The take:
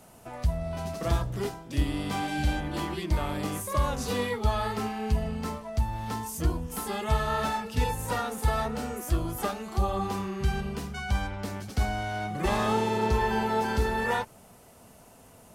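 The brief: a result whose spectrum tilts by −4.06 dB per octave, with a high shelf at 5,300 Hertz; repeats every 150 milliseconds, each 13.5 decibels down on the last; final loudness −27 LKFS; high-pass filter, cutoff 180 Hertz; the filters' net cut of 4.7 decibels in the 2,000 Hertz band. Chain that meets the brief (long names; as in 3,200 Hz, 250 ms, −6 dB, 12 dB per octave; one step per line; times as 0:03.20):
high-pass filter 180 Hz
parametric band 2,000 Hz −7 dB
high-shelf EQ 5,300 Hz +7 dB
repeating echo 150 ms, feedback 21%, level −13.5 dB
level +5 dB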